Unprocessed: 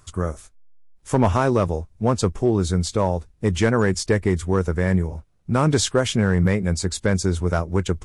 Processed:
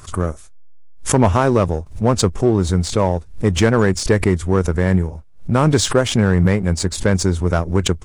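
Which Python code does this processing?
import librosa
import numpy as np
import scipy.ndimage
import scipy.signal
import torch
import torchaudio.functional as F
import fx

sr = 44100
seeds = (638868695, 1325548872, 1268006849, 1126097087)

p1 = fx.backlash(x, sr, play_db=-19.5)
p2 = x + (p1 * librosa.db_to_amplitude(-3.5))
y = fx.pre_swell(p2, sr, db_per_s=140.0)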